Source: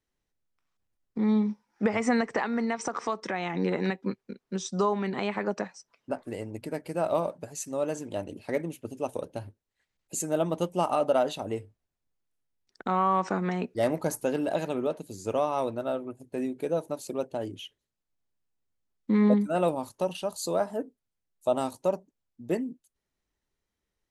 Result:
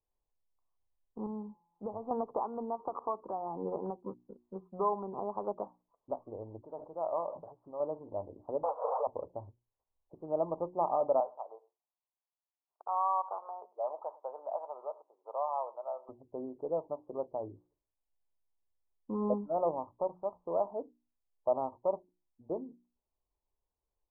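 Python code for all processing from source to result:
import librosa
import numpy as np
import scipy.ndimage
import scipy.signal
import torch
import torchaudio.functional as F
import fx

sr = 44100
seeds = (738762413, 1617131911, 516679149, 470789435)

y = fx.chain(x, sr, fx.cheby2_lowpass(hz=3700.0, order=4, stop_db=50),
    fx.low_shelf(hz=240.0, db=7.0),
    fx.comb_fb(f0_hz=170.0, decay_s=1.3, harmonics='all', damping=0.0, mix_pct=60), at=(1.26, 2.11))
y = fx.chain(y, sr, fx.low_shelf(hz=430.0, db=-12.0),
    fx.sustainer(db_per_s=75.0), at=(6.62, 7.8))
y = fx.chain(y, sr, fx.zero_step(step_db=-32.5),
    fx.brickwall_highpass(low_hz=450.0),
    fx.env_flatten(amount_pct=100), at=(8.63, 9.07))
y = fx.chain(y, sr, fx.highpass(hz=650.0, slope=24),
    fx.echo_single(ms=103, db=-21.5), at=(11.2, 16.09))
y = scipy.signal.sosfilt(scipy.signal.butter(12, 1100.0, 'lowpass', fs=sr, output='sos'), y)
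y = fx.peak_eq(y, sr, hz=200.0, db=-13.5, octaves=2.1)
y = fx.hum_notches(y, sr, base_hz=60, count=6)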